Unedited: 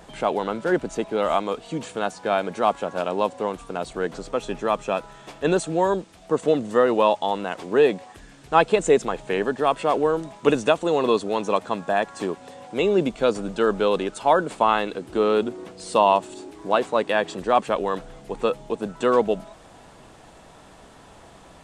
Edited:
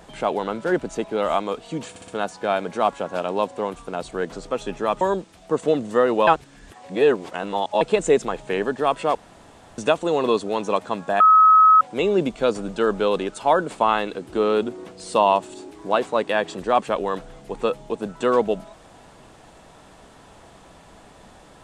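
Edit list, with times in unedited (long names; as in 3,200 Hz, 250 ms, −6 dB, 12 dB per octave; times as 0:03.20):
0:01.90: stutter 0.06 s, 4 plays
0:04.83–0:05.81: remove
0:07.07–0:08.61: reverse
0:09.95–0:10.58: fill with room tone
0:12.00–0:12.61: beep over 1,280 Hz −9 dBFS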